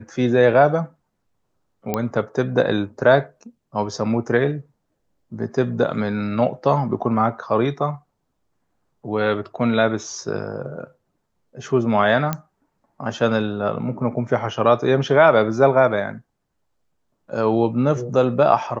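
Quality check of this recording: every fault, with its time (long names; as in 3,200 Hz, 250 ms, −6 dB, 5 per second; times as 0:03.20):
0:01.94: click −8 dBFS
0:12.33: click −9 dBFS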